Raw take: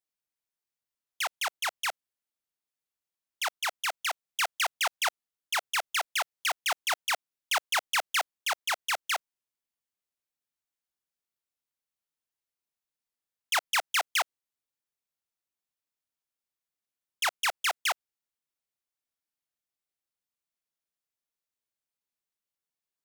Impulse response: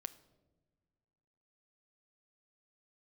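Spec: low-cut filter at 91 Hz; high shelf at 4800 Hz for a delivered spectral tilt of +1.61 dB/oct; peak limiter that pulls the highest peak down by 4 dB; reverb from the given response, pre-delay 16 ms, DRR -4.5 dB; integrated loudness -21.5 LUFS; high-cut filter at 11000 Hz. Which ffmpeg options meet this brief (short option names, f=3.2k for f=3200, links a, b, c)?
-filter_complex "[0:a]highpass=91,lowpass=11k,highshelf=f=4.8k:g=-5,alimiter=limit=-23.5dB:level=0:latency=1,asplit=2[a][b];[1:a]atrim=start_sample=2205,adelay=16[c];[b][c]afir=irnorm=-1:irlink=0,volume=8dB[d];[a][d]amix=inputs=2:normalize=0,volume=5dB"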